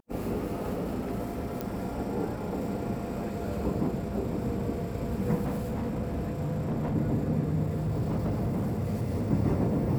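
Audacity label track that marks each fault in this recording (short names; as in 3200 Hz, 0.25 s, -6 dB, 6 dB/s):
1.610000	1.610000	pop -18 dBFS
5.440000	6.960000	clipped -26.5 dBFS
7.660000	9.280000	clipped -25 dBFS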